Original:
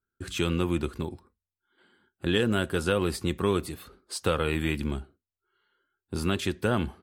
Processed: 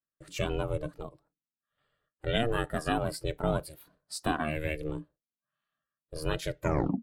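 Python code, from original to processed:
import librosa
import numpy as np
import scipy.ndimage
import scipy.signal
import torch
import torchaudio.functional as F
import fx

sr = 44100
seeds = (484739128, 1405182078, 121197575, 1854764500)

y = fx.tape_stop_end(x, sr, length_s=0.44)
y = fx.noise_reduce_blind(y, sr, reduce_db=11)
y = y * np.sin(2.0 * np.pi * 230.0 * np.arange(len(y)) / sr)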